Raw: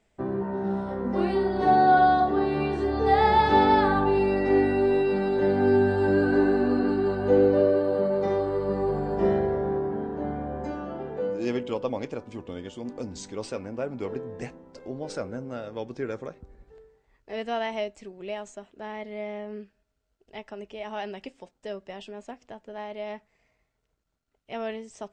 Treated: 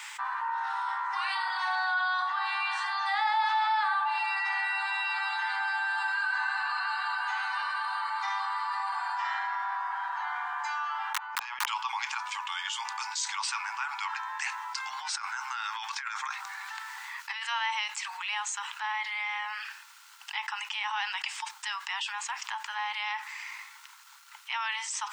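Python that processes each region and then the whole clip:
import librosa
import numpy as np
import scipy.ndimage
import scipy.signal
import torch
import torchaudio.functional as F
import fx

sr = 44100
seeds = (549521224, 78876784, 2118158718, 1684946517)

y = fx.chain(x, sr, fx.over_compress(threshold_db=-33.0, ratio=-0.5),
    fx.bandpass_q(hz=280.0, q=0.51),
    fx.overflow_wrap(gain_db=25.5), at=(11.13, 11.68))
y = fx.chain(y, sr, fx.highpass(hz=820.0, slope=6),
    fx.over_compress(threshold_db=-43.0, ratio=-0.5), at=(14.46, 17.43))
y = scipy.signal.sosfilt(scipy.signal.butter(16, 870.0, 'highpass', fs=sr, output='sos'), y)
y = fx.env_flatten(y, sr, amount_pct=70)
y = F.gain(torch.from_numpy(y), -6.0).numpy()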